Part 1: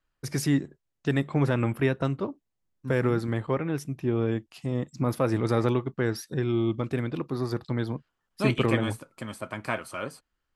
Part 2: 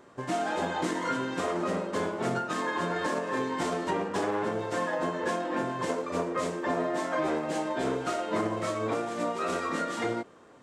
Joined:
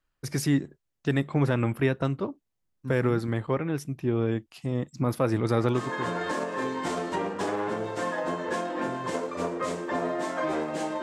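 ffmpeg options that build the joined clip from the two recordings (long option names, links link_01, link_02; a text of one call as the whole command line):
ffmpeg -i cue0.wav -i cue1.wav -filter_complex "[0:a]apad=whole_dur=11.02,atrim=end=11.02,atrim=end=6.16,asetpts=PTS-STARTPTS[link_01];[1:a]atrim=start=2.33:end=7.77,asetpts=PTS-STARTPTS[link_02];[link_01][link_02]acrossfade=duration=0.58:curve1=qsin:curve2=qsin" out.wav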